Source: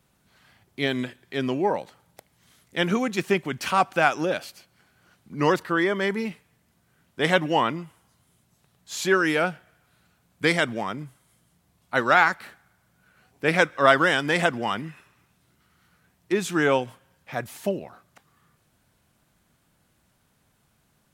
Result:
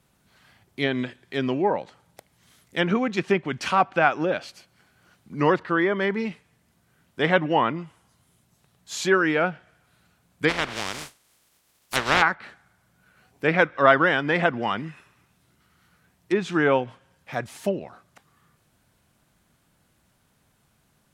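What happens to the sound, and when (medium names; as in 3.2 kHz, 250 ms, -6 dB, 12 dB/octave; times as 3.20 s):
10.48–12.21 s: spectral contrast reduction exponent 0.21
whole clip: low-pass that closes with the level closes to 2.6 kHz, closed at -19.5 dBFS; trim +1 dB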